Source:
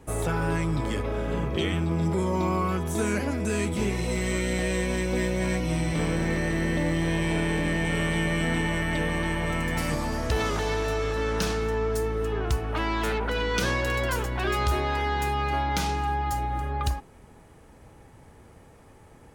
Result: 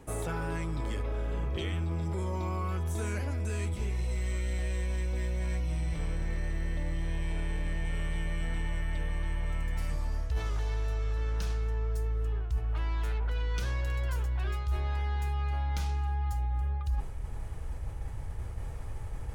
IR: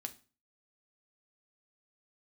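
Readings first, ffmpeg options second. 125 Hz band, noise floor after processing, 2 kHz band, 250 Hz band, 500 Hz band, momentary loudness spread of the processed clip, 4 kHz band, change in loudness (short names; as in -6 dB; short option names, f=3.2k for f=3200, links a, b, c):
-3.0 dB, -37 dBFS, -12.5 dB, -13.5 dB, -13.5 dB, 8 LU, -12.5 dB, -7.0 dB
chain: -af "asubboost=boost=11:cutoff=70,areverse,acompressor=threshold=-37dB:ratio=5,areverse,volume=5.5dB"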